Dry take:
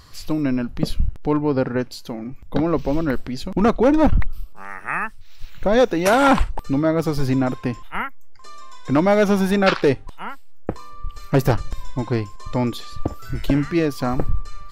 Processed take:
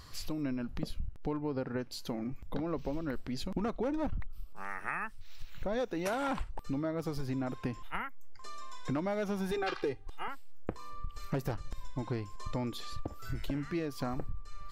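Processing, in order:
0:09.51–0:10.28: comb filter 2.5 ms, depth 90%
downward compressor 6 to 1, threshold −27 dBFS, peak gain reduction 18 dB
level −5 dB

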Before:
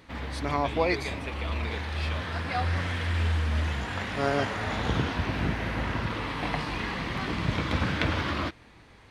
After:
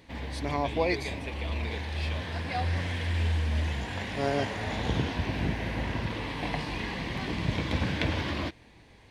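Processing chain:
parametric band 1,300 Hz −11.5 dB 0.4 octaves
level −1 dB

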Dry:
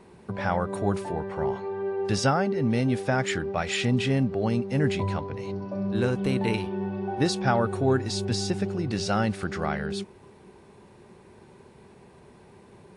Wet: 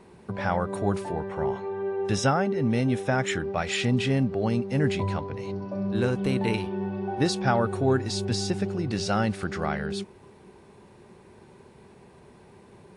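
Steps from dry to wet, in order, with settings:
0:01.28–0:03.44: Butterworth band-reject 4,600 Hz, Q 6.9

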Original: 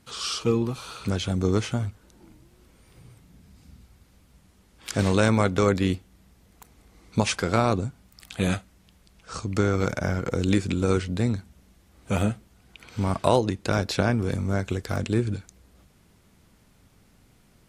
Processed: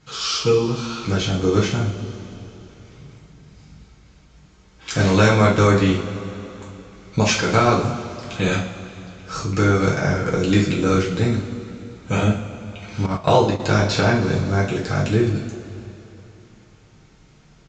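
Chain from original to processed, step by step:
coupled-rooms reverb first 0.39 s, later 3.3 s, from −18 dB, DRR −5.5 dB
0:13.06–0:13.60: noise gate −19 dBFS, range −10 dB
downsampling to 16,000 Hz
level +1 dB

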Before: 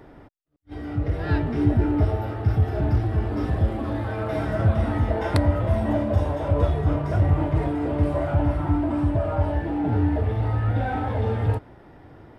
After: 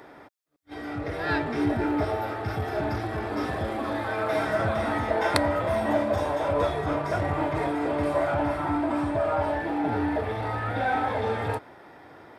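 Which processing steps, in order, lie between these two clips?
high-pass filter 830 Hz 6 dB per octave
notch filter 2,900 Hz, Q 11
level +6.5 dB

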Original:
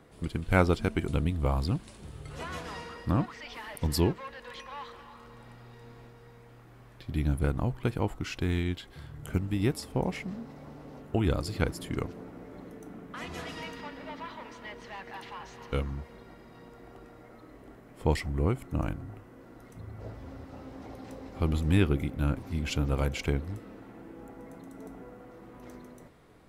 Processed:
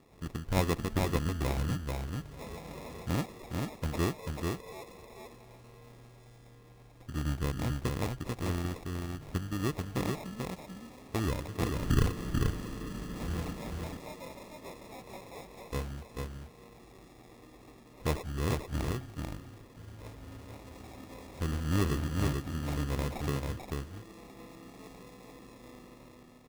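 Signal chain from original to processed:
0:11.75–0:13.53: spectral tilt −4.5 dB per octave
decimation without filtering 29×
single-tap delay 440 ms −3.5 dB
level −5 dB

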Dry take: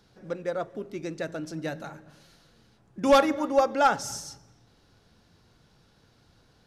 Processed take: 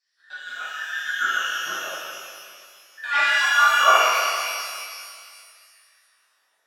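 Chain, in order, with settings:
frequency inversion band by band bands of 2,000 Hz
noise gate −52 dBFS, range −11 dB
auto-filter band-pass saw down 0.42 Hz 390–4,900 Hz
harmonic and percussive parts rebalanced harmonic −8 dB
reverb with rising layers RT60 2.1 s, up +12 semitones, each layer −8 dB, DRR −10.5 dB
level +3.5 dB

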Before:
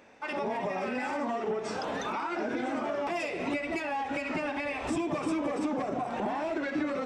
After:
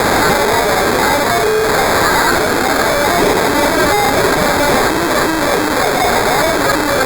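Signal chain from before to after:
sign of each sample alone
meter weighting curve A
sample-rate reduction 2,900 Hz, jitter 0%
hollow resonant body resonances 420/1,600 Hz, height 7 dB
boost into a limiter +29.5 dB
level −4 dB
Opus 64 kbit/s 48,000 Hz

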